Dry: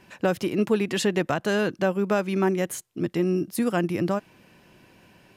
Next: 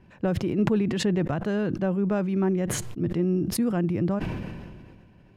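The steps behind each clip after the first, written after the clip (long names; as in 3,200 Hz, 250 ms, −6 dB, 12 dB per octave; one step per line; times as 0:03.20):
RIAA equalisation playback
level that may fall only so fast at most 30 dB per second
level −7.5 dB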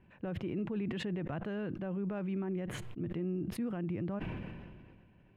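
high shelf with overshoot 3,900 Hz −10 dB, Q 1.5
brickwall limiter −20.5 dBFS, peak gain reduction 11 dB
level −8.5 dB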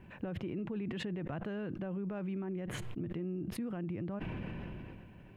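downward compressor 4 to 1, threshold −46 dBFS, peak gain reduction 11.5 dB
level +8.5 dB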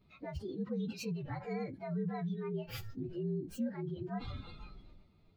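partials spread apart or drawn together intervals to 118%
noise reduction from a noise print of the clip's start 14 dB
level +4 dB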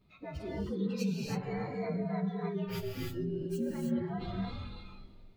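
reverb whose tail is shaped and stops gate 340 ms rising, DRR −1.5 dB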